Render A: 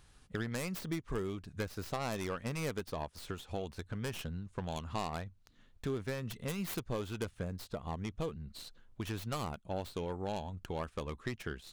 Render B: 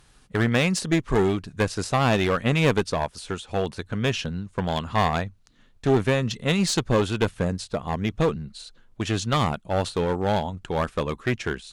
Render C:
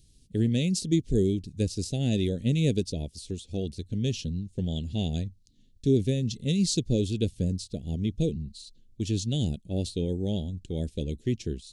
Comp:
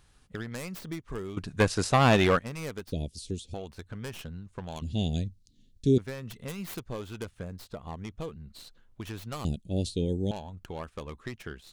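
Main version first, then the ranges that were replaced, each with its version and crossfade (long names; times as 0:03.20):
A
0:01.37–0:02.39: punch in from B
0:02.92–0:03.54: punch in from C
0:04.82–0:05.98: punch in from C
0:09.45–0:10.31: punch in from C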